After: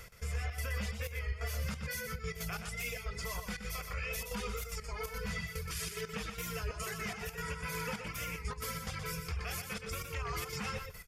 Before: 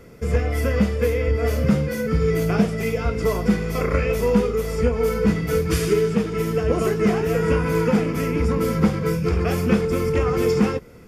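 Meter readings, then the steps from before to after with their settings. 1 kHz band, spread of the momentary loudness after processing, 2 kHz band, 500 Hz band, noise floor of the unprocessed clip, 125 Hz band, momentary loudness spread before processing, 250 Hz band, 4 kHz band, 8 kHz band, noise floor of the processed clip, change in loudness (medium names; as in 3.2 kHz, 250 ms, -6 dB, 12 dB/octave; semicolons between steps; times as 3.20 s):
-13.5 dB, 2 LU, -9.5 dB, -24.5 dB, -28 dBFS, -18.0 dB, 3 LU, -25.5 dB, -6.5 dB, -5.5 dB, -48 dBFS, -17.5 dB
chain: reverb removal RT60 0.81 s; amplifier tone stack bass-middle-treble 10-0-10; reverse; upward compressor, threshold -24 dBFS; reverse; peak limiter -25 dBFS, peak gain reduction 8.5 dB; trance gate "x.xxxx.xxxx.x.x" 181 bpm -12 dB; on a send: delay 122 ms -7 dB; on the sum: warped record 33 1/3 rpm, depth 100 cents; trim -4.5 dB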